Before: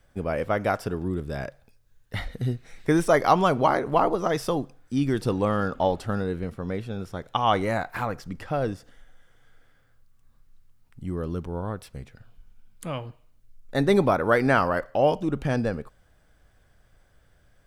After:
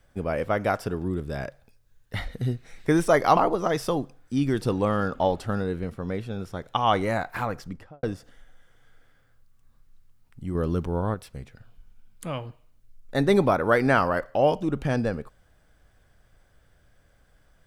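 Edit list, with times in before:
3.37–3.97 cut
8.21–8.63 studio fade out
11.15–11.74 gain +4.5 dB

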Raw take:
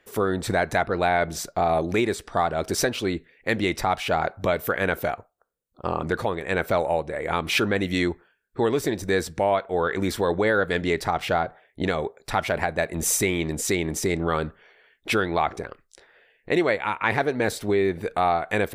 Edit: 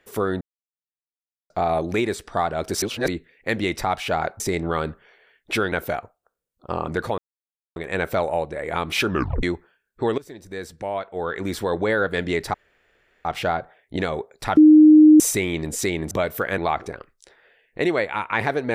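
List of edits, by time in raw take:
0.41–1.5 mute
2.82–3.08 reverse
4.4–4.87 swap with 13.97–15.29
6.33 insert silence 0.58 s
7.66 tape stop 0.34 s
8.75–10.44 fade in, from -19.5 dB
11.11 insert room tone 0.71 s
12.43–13.06 bleep 307 Hz -6.5 dBFS

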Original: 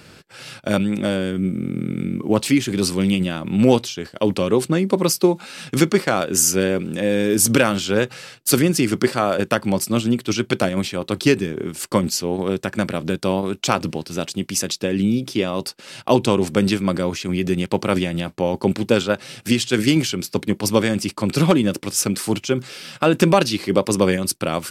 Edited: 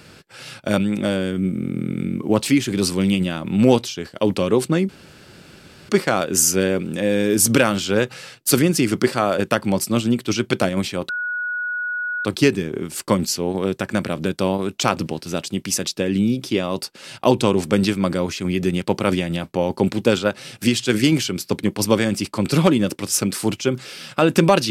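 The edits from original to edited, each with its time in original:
4.89–5.89 room tone
11.09 add tone 1460 Hz -22 dBFS 1.16 s

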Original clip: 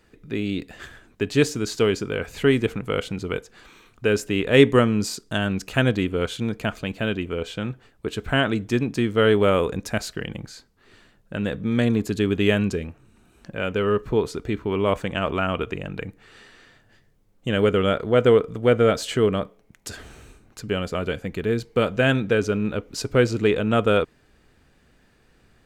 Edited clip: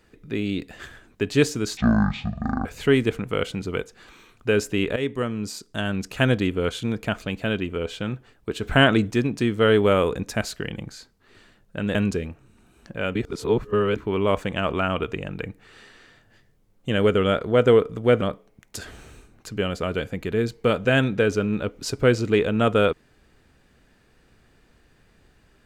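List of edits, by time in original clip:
1.77–2.22 speed 51%
4.53–5.82 fade in, from -15 dB
8.2–8.68 gain +4.5 dB
11.52–12.54 cut
13.74–14.55 reverse
18.8–19.33 cut

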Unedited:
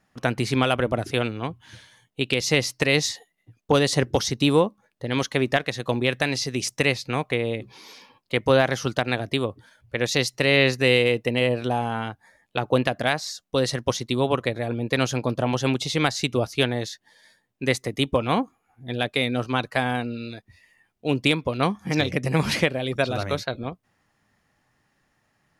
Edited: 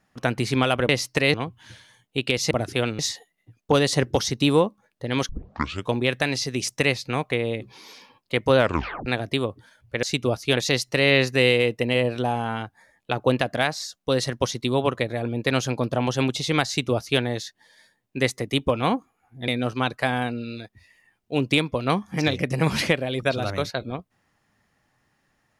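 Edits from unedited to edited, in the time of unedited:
0.89–1.37 swap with 2.54–2.99
5.29 tape start 0.63 s
8.57 tape stop 0.49 s
16.13–16.67 copy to 10.03
18.94–19.21 cut

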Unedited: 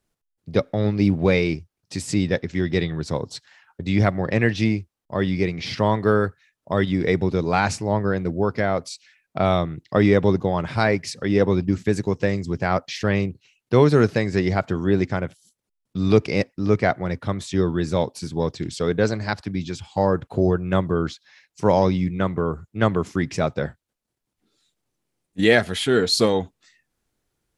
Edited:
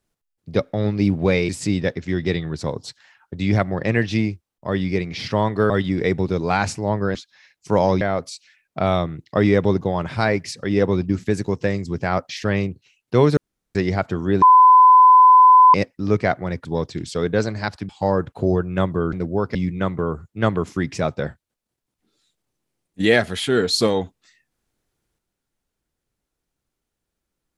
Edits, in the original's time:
1.49–1.96 cut
6.17–6.73 cut
8.18–8.6 swap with 21.08–21.94
13.96–14.34 room tone
15.01–16.33 bleep 1010 Hz -6.5 dBFS
17.24–18.3 cut
19.54–19.84 cut

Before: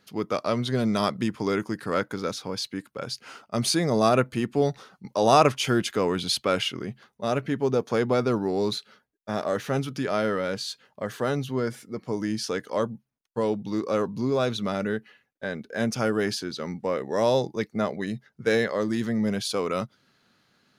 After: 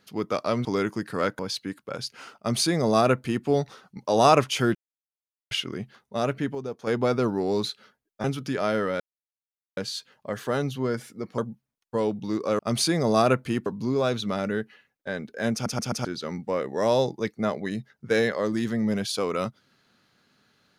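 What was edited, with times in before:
0.65–1.38 cut
2.12–2.47 cut
3.46–4.53 copy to 14.02
5.83–6.59 mute
7.24–8.34 dip -9.5 dB, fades 0.39 s logarithmic
9.32–9.74 cut
10.5 insert silence 0.77 s
12.11–12.81 cut
15.89 stutter in place 0.13 s, 4 plays

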